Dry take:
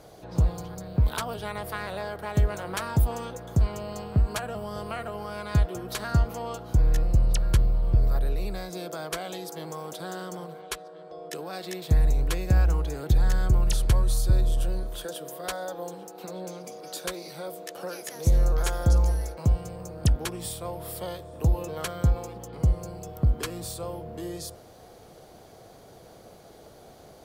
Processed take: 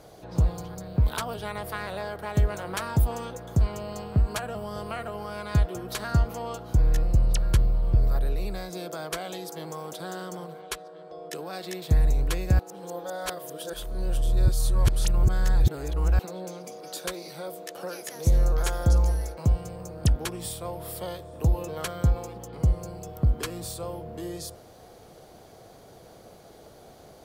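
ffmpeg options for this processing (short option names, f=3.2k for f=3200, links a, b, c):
-filter_complex "[0:a]asplit=3[a][b][c];[a]atrim=end=12.592[d];[b]atrim=start=12.588:end=16.192,asetpts=PTS-STARTPTS,areverse[e];[c]atrim=start=16.188[f];[d][e]acrossfade=d=0.004:c1=hsin:c2=hsin[g];[g][f]acrossfade=d=0.004:c1=hsin:c2=hsin"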